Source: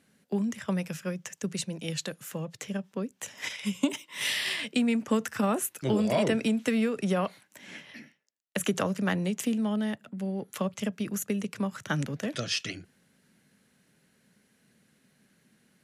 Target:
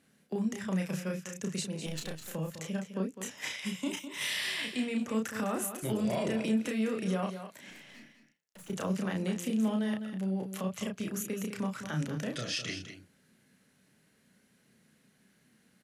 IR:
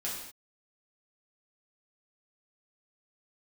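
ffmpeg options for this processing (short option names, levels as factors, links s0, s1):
-filter_complex "[0:a]asettb=1/sr,asplit=3[s0][s1][s2];[s0]atrim=end=1.864[s3];[s1]atrim=start=1.86:end=2.28,asetpts=PTS-STARTPTS,afade=t=in:d=0.004:c=qsin,afade=t=out:st=0.416:d=0.004:c=qsin,aeval=exprs='if(lt(val(0),0),0.251*val(0),val(0))':c=same[s4];[s2]atrim=start=2.276[s5];[s3][s4]acrossfade=d=0.004:c1=hsin:c2=qsin[s6];[s6][s5]acrossfade=d=0.004:c1=qsin:c2=hsin,alimiter=limit=0.075:level=0:latency=1:release=73,asettb=1/sr,asplit=3[s7][s8][s9];[s7]atrim=end=7.704[s10];[s8]atrim=start=7.7:end=8.7,asetpts=PTS-STARTPTS,afade=t=in:d=0.004:c=qsin,afade=t=out:st=0.996:d=0.004:c=qsin,aeval=exprs='(tanh(251*val(0)+0.3)-tanh(0.3))/251':c=same[s11];[s9]atrim=start=8.696[s12];[s10][s11]acrossfade=d=0.004:c1=hsin:c2=qsin[s13];[s13][s12]acrossfade=d=0.004:c1=qsin:c2=hsin,asplit=2[s14][s15];[s15]adelay=32,volume=0.668[s16];[s14][s16]amix=inputs=2:normalize=0,aecho=1:1:205:0.316,volume=0.708"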